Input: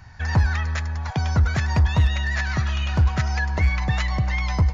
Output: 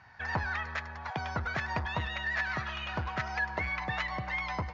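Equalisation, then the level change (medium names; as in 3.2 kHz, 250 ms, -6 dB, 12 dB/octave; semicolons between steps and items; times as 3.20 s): high-pass 790 Hz 6 dB/octave; distance through air 160 m; treble shelf 3.4 kHz -7 dB; 0.0 dB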